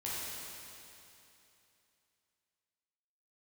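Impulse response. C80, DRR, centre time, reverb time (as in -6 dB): -2.0 dB, -8.5 dB, 188 ms, 2.9 s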